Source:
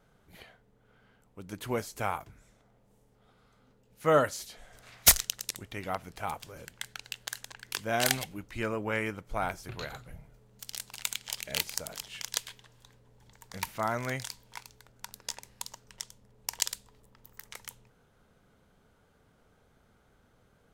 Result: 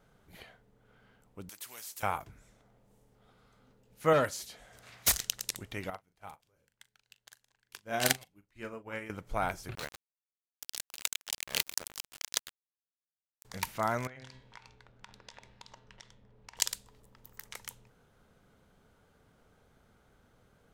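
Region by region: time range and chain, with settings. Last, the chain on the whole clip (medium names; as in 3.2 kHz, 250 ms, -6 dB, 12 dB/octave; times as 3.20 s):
1.49–2.03 s: differentiator + spectrum-flattening compressor 2:1
4.13–5.24 s: valve stage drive 20 dB, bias 0.3 + high-pass 49 Hz
5.90–9.10 s: doubling 40 ms -8.5 dB + upward expansion 2.5:1, over -42 dBFS
9.75–13.45 s: bass shelf 110 Hz -6 dB + small samples zeroed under -36 dBFS
14.07–16.57 s: low-pass 3.4 kHz + de-hum 129.4 Hz, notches 32 + compression 8:1, threshold -45 dBFS
whole clip: none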